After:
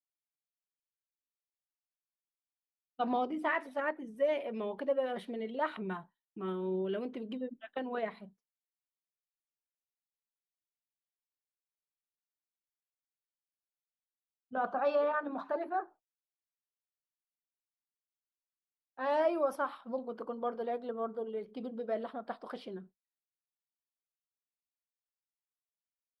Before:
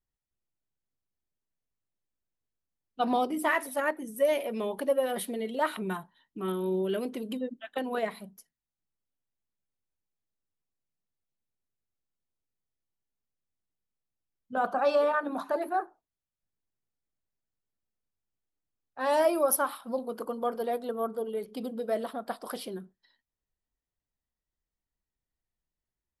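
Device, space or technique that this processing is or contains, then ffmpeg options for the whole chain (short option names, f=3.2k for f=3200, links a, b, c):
hearing-loss simulation: -af "lowpass=3.1k,agate=range=-33dB:threshold=-44dB:ratio=3:detection=peak,volume=-5dB"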